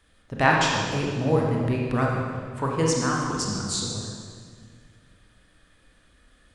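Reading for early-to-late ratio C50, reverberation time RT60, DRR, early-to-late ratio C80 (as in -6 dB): 0.0 dB, 1.8 s, -2.5 dB, 1.5 dB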